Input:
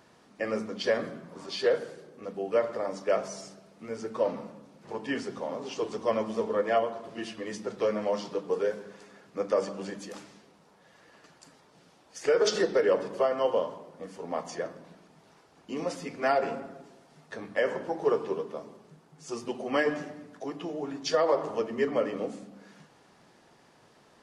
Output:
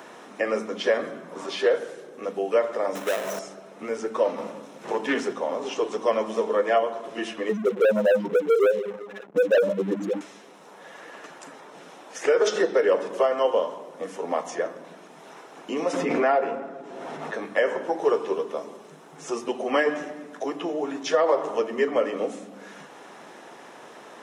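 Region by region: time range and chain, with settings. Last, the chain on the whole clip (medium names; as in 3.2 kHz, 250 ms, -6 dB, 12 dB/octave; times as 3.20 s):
2.95–3.39 s: square wave that keeps the level + compression 2.5:1, threshold -33 dBFS
4.38–5.33 s: waveshaping leveller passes 1 + loudspeaker Doppler distortion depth 0.11 ms
7.49–10.21 s: spectral contrast enhancement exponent 3.6 + waveshaping leveller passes 3
15.93–17.34 s: low-pass 1.7 kHz 6 dB/octave + swell ahead of each attack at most 21 dB/s
whole clip: high-pass 300 Hz 12 dB/octave; band-stop 4.6 kHz, Q 5.3; three bands compressed up and down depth 40%; trim +5.5 dB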